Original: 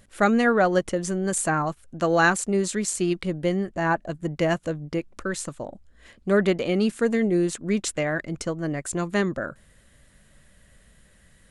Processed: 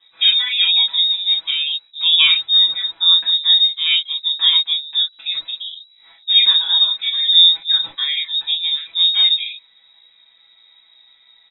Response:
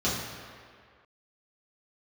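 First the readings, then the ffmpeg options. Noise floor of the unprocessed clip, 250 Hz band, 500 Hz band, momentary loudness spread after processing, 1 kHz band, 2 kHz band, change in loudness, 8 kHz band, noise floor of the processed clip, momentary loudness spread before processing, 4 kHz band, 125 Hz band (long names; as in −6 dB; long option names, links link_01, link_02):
−57 dBFS, below −35 dB, below −30 dB, 9 LU, −13.0 dB, +1.0 dB, +11.0 dB, below −40 dB, −54 dBFS, 11 LU, +30.0 dB, below −30 dB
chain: -filter_complex "[0:a]equalizer=frequency=1100:width=5.7:gain=-10,aecho=1:1:6.2:0.97[link_01];[1:a]atrim=start_sample=2205,atrim=end_sample=3087[link_02];[link_01][link_02]afir=irnorm=-1:irlink=0,lowpass=frequency=3300:width_type=q:width=0.5098,lowpass=frequency=3300:width_type=q:width=0.6013,lowpass=frequency=3300:width_type=q:width=0.9,lowpass=frequency=3300:width_type=q:width=2.563,afreqshift=-3900,volume=-10dB"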